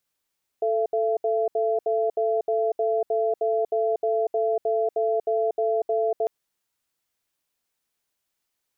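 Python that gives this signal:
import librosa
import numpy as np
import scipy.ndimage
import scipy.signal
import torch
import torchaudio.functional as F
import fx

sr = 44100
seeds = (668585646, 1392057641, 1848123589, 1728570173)

y = fx.cadence(sr, length_s=5.65, low_hz=441.0, high_hz=677.0, on_s=0.24, off_s=0.07, level_db=-23.0)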